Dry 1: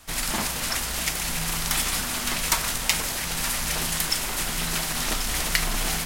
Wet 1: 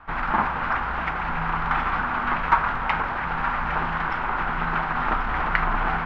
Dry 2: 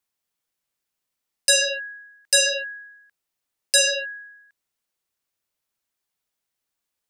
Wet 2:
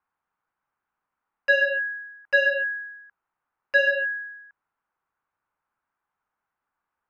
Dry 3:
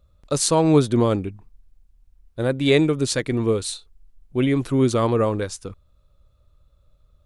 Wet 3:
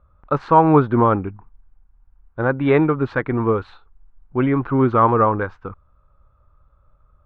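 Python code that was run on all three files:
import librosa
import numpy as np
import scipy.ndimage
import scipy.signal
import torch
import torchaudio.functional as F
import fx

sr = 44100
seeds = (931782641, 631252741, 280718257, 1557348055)

y = scipy.signal.sosfilt(scipy.signal.butter(4, 2200.0, 'lowpass', fs=sr, output='sos'), x)
y = fx.band_shelf(y, sr, hz=1100.0, db=10.0, octaves=1.2)
y = y * librosa.db_to_amplitude(1.5)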